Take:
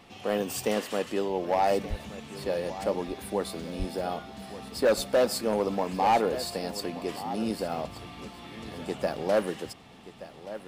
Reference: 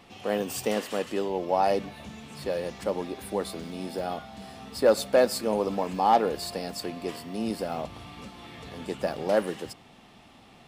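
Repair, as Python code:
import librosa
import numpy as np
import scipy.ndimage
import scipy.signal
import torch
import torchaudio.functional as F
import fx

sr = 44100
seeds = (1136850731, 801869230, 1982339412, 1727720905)

y = fx.fix_declip(x, sr, threshold_db=-17.5)
y = fx.highpass(y, sr, hz=140.0, slope=24, at=(1.89, 2.01), fade=0.02)
y = fx.highpass(y, sr, hz=140.0, slope=24, at=(3.78, 3.9), fade=0.02)
y = fx.fix_echo_inverse(y, sr, delay_ms=1176, level_db=-15.0)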